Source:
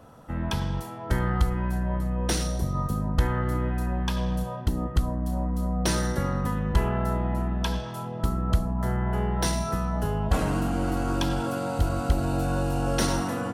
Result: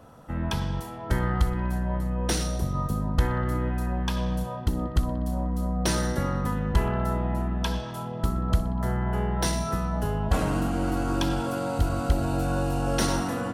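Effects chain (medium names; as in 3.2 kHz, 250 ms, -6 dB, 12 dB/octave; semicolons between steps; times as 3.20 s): bucket-brigade echo 61 ms, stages 2048, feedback 77%, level -19 dB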